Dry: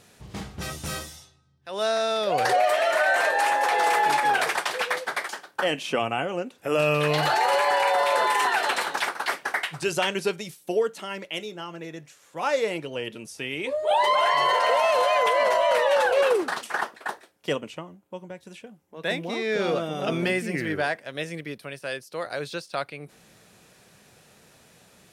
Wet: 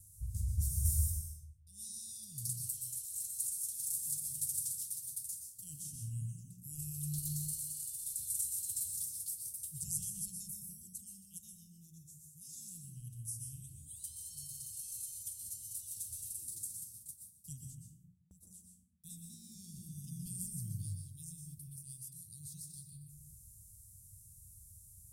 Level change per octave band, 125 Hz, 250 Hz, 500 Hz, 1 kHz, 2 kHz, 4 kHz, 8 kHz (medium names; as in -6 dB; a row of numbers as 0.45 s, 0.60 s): -3.5 dB, -18.5 dB, under -40 dB, under -40 dB, under -40 dB, -25.5 dB, +2.0 dB